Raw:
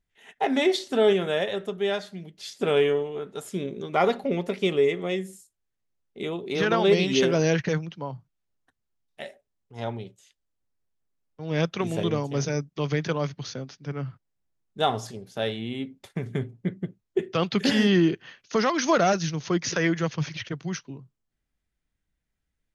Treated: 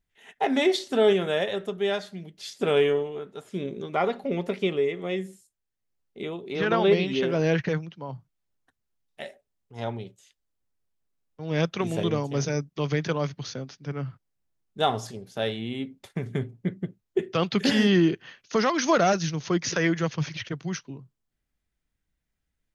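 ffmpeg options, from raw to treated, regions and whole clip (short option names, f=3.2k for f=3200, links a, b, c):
-filter_complex "[0:a]asettb=1/sr,asplit=3[a][b][c];[a]atrim=end=2.974[d];[b]atrim=start=2.97:end=8.09,asetpts=PTS-STARTPTS,afade=t=in:d=0.004:c=qsin,afade=t=out:st=5.116:d=0.004:c=qsin,acrossover=split=4200[e][f];[f]acompressor=threshold=-55dB:ratio=4:attack=1:release=60[g];[e][g]amix=inputs=2:normalize=0,tremolo=f=1.3:d=0.37[h];[c]atrim=start=8.086[i];[d][h]acrossfade=d=0.004:c1=hsin:c2=qsin[j];[j][i]acrossfade=d=0.004:c1=qsin:c2=hsin"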